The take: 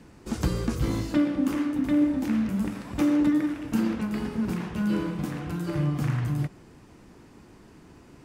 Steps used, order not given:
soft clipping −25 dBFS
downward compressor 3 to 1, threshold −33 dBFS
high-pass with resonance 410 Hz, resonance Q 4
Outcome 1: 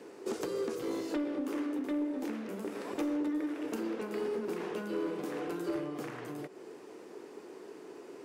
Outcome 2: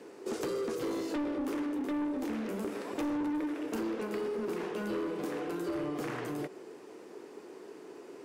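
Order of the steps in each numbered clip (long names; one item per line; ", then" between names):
downward compressor, then high-pass with resonance, then soft clipping
high-pass with resonance, then soft clipping, then downward compressor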